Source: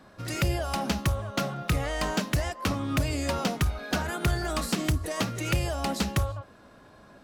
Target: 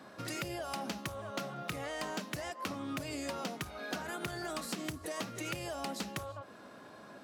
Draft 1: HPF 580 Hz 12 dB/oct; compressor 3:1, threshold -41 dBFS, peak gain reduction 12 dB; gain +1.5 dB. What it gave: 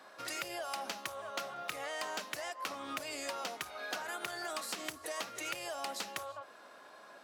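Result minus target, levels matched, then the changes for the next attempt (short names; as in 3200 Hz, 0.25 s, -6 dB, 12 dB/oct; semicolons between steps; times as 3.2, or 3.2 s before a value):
250 Hz band -9.5 dB
change: HPF 180 Hz 12 dB/oct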